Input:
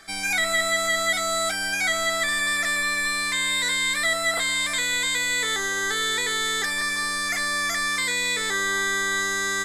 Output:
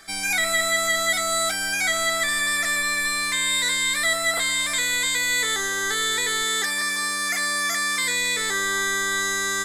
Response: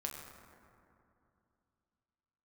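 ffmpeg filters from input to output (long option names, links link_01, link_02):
-filter_complex "[0:a]asettb=1/sr,asplit=3[link_01][link_02][link_03];[link_01]atrim=end=6.434[link_04];[link_02]atrim=start=6.43:end=8.04,asetpts=PTS-STARTPTS,afade=type=in:duration=0.004:curve=qsin,afade=type=out:start_time=1.606:duration=0.004:curve=qsin,highpass=frequency=120:width=0.5412,highpass=frequency=120:width=1.3066[link_05];[link_03]atrim=start=8.036[link_06];[link_04][link_05]acrossfade=duration=0.004:curve1=hsin:curve2=qsin[link_07];[link_07][link_06]acrossfade=duration=0.004:curve1=qsin:curve2=hsin,asplit=2[link_08][link_09];[link_09]aderivative[link_10];[1:a]atrim=start_sample=2205[link_11];[link_10][link_11]afir=irnorm=-1:irlink=0,volume=-2dB[link_12];[link_08][link_12]amix=inputs=2:normalize=0"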